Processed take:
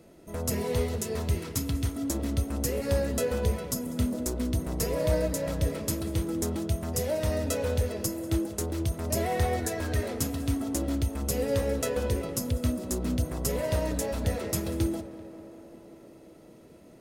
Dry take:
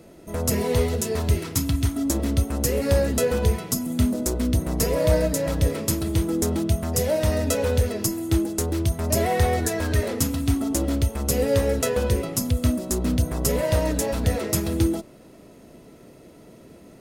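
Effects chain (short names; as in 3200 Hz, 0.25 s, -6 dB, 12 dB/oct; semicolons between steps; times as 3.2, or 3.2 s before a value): tape echo 0.194 s, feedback 86%, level -13 dB, low-pass 2500 Hz; gain -6.5 dB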